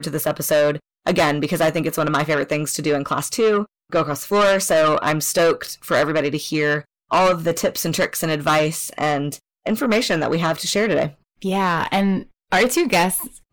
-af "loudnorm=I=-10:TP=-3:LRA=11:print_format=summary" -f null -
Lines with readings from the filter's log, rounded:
Input Integrated:    -19.8 LUFS
Input True Peak:     -11.2 dBTP
Input LRA:             1.4 LU
Input Threshold:     -29.8 LUFS